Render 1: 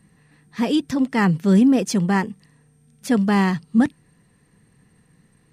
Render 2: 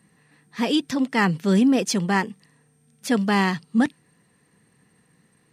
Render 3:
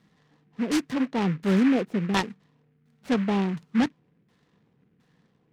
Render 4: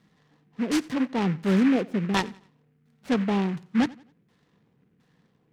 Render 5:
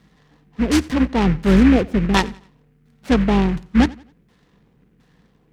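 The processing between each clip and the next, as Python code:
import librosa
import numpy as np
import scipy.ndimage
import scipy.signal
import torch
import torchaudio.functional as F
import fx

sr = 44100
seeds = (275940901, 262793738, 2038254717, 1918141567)

y1 = fx.dynamic_eq(x, sr, hz=3600.0, q=0.78, threshold_db=-40.0, ratio=4.0, max_db=4)
y1 = fx.highpass(y1, sr, hz=250.0, slope=6)
y2 = fx.filter_lfo_lowpass(y1, sr, shape='saw_down', hz=1.4, low_hz=330.0, high_hz=3700.0, q=0.88)
y2 = fx.noise_mod_delay(y2, sr, seeds[0], noise_hz=1600.0, depth_ms=0.081)
y2 = y2 * librosa.db_to_amplitude(-3.0)
y3 = fx.echo_feedback(y2, sr, ms=88, feedback_pct=36, wet_db=-22.0)
y4 = fx.octave_divider(y3, sr, octaves=2, level_db=-6.0)
y4 = y4 * librosa.db_to_amplitude(7.5)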